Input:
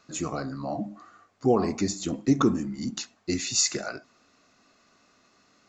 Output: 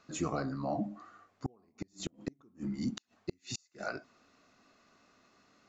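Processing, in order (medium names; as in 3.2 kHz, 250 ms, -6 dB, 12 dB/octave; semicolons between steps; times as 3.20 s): inverted gate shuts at -18 dBFS, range -39 dB; treble shelf 4.9 kHz -7.5 dB; trim -2.5 dB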